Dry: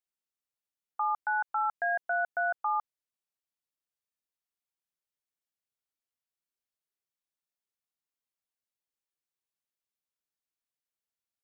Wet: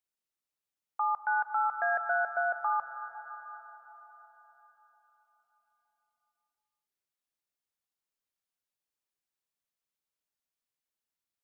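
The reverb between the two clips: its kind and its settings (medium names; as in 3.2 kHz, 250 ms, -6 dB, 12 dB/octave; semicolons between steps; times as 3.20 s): algorithmic reverb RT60 4.6 s, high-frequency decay 0.75×, pre-delay 105 ms, DRR 8 dB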